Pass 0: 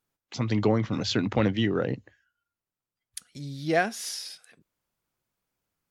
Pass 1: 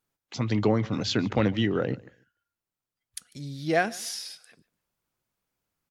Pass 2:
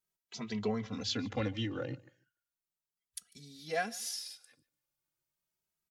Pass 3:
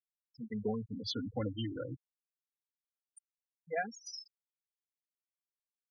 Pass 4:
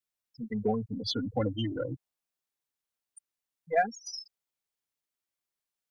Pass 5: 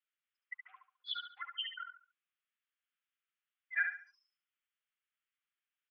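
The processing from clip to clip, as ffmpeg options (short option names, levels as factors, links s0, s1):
-af "aecho=1:1:147|294:0.0708|0.0163"
-filter_complex "[0:a]highshelf=f=3000:g=8.5,asplit=2[s0][s1];[s1]adelay=2.7,afreqshift=0.35[s2];[s0][s2]amix=inputs=2:normalize=1,volume=0.376"
-af "afftfilt=real='re*gte(hypot(re,im),0.0355)':imag='im*gte(hypot(re,im),0.0355)':win_size=1024:overlap=0.75,volume=0.841"
-af "aeval=exprs='0.0668*(cos(1*acos(clip(val(0)/0.0668,-1,1)))-cos(1*PI/2))+0.000531*(cos(8*acos(clip(val(0)/0.0668,-1,1)))-cos(8*PI/2))':c=same,adynamicequalizer=threshold=0.00251:dfrequency=710:dqfactor=2:tfrequency=710:tqfactor=2:attack=5:release=100:ratio=0.375:range=3:mode=boostabove:tftype=bell,volume=1.88"
-filter_complex "[0:a]asuperpass=centerf=2000:order=12:qfactor=0.92,asplit=2[s0][s1];[s1]aecho=0:1:70|140|210|280:0.501|0.155|0.0482|0.0149[s2];[s0][s2]amix=inputs=2:normalize=0,volume=1.26"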